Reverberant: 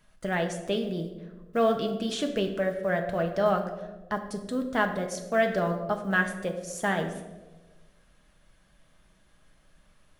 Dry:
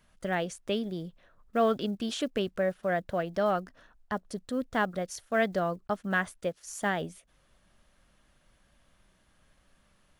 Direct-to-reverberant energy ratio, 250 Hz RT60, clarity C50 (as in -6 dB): 4.0 dB, 1.4 s, 9.0 dB